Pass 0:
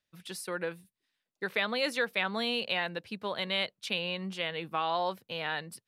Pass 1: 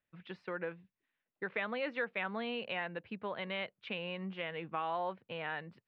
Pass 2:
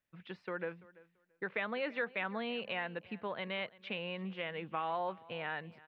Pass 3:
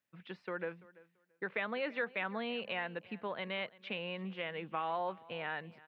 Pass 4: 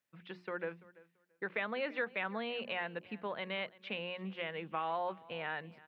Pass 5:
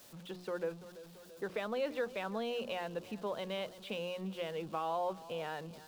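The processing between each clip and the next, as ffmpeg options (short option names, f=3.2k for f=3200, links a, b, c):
-filter_complex "[0:a]lowpass=f=2.6k:w=0.5412,lowpass=f=2.6k:w=1.3066,asplit=2[a][b];[b]acompressor=threshold=-39dB:ratio=6,volume=2dB[c];[a][c]amix=inputs=2:normalize=0,volume=-8dB"
-af "aecho=1:1:337|674:0.0891|0.016"
-af "highpass=120"
-af "bandreject=f=60:t=h:w=6,bandreject=f=120:t=h:w=6,bandreject=f=180:t=h:w=6,bandreject=f=240:t=h:w=6,bandreject=f=300:t=h:w=6,bandreject=f=360:t=h:w=6"
-af "aeval=exprs='val(0)+0.5*0.00335*sgn(val(0))':c=same,equalizer=f=500:t=o:w=1:g=3,equalizer=f=2k:t=o:w=1:g=-11,equalizer=f=4k:t=o:w=1:g=4"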